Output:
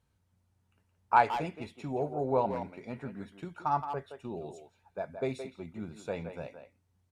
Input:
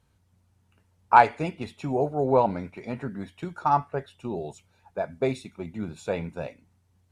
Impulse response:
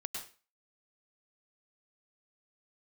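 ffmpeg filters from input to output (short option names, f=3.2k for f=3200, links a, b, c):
-filter_complex "[0:a]asplit=2[a][b];[b]adelay=170,highpass=300,lowpass=3.4k,asoftclip=type=hard:threshold=-13dB,volume=-8dB[c];[a][c]amix=inputs=2:normalize=0,volume=-7.5dB"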